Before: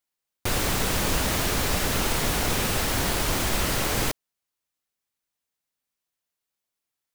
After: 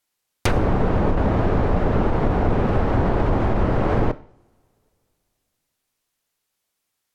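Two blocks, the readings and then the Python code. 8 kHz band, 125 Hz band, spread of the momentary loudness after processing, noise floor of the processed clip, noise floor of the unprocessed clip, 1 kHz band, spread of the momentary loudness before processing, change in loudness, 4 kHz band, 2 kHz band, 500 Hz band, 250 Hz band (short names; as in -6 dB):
under -15 dB, +9.0 dB, 3 LU, -78 dBFS, under -85 dBFS, +5.0 dB, 3 LU, +3.0 dB, -12.5 dB, -3.5 dB, +8.0 dB, +8.5 dB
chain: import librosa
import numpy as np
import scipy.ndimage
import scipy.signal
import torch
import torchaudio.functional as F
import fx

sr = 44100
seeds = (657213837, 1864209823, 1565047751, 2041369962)

y = fx.env_lowpass_down(x, sr, base_hz=850.0, full_db=-21.0)
y = fx.rev_double_slope(y, sr, seeds[0], early_s=0.5, late_s=2.8, knee_db=-26, drr_db=14.5)
y = fx.over_compress(y, sr, threshold_db=-25.0, ratio=-1.0)
y = y * librosa.db_to_amplitude(8.5)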